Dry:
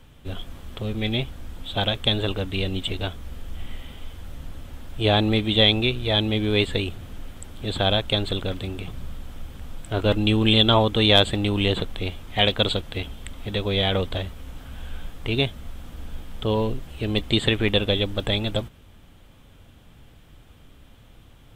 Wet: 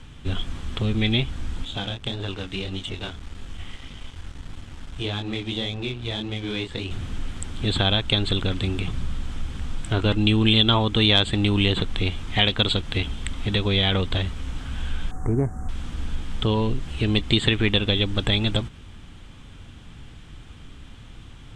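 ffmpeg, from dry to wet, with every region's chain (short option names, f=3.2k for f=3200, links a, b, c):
-filter_complex "[0:a]asettb=1/sr,asplit=3[a][b][c];[a]atrim=end=1.654[d];[b]atrim=start=1.65:end=6.91,asetpts=PTS-STARTPTS,afade=t=in:d=0.004:c=qsin,afade=t=out:st=5.256:d=0.004:c=qsin,flanger=delay=20:depth=6.4:speed=1.7,acrossover=split=440|1200[e][f][g];[e]acompressor=threshold=-36dB:ratio=4[h];[f]acompressor=threshold=-39dB:ratio=4[i];[g]acompressor=threshold=-39dB:ratio=4[j];[h][i][j]amix=inputs=3:normalize=0,aeval=exprs='sgn(val(0))*max(abs(val(0))-0.00335,0)':c=same[k];[c]atrim=start=6.906[l];[d][k]acrossfade=d=0.004:c1=hsin:c2=qsin[m];[m][l]acrossfade=d=0.004:c1=qsin:c2=hsin,asettb=1/sr,asplit=3[n][o][p];[n]atrim=end=15.114[q];[o]atrim=start=15.11:end=15.69,asetpts=PTS-STARTPTS,afade=t=in:d=0.004:c=qsin,afade=t=out:st=0.576:d=0.004:c=qsin,aeval=exprs='val(0)+0.00447*sin(2*PI*750*n/s)':c=same,asuperstop=centerf=3300:order=8:qfactor=0.66[r];[p]atrim=start=15.686[s];[q][r]acrossfade=d=0.004:c1=hsin:c2=qsin[t];[t][s]acrossfade=d=0.004:c1=qsin:c2=hsin,acompressor=threshold=-27dB:ratio=2,lowpass=f=8.7k:w=0.5412,lowpass=f=8.7k:w=1.3066,equalizer=f=580:t=o:w=0.9:g=-8,volume=7.5dB"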